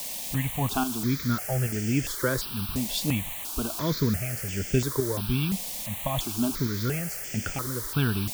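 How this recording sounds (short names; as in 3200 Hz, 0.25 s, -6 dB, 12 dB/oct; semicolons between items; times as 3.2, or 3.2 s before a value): tremolo saw up 1.2 Hz, depth 55%; a quantiser's noise floor 6-bit, dither triangular; notches that jump at a steady rate 2.9 Hz 370–3900 Hz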